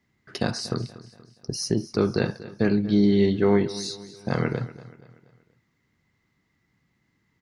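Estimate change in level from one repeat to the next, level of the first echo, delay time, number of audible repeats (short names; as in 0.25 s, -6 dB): -6.5 dB, -17.0 dB, 0.238 s, 3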